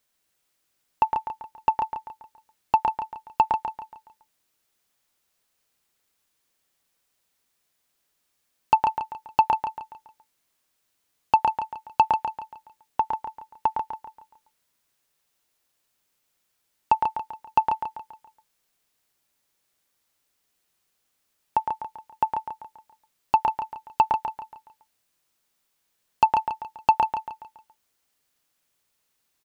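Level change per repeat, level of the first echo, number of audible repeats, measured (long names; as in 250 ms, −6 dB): −7.5 dB, −6.5 dB, 4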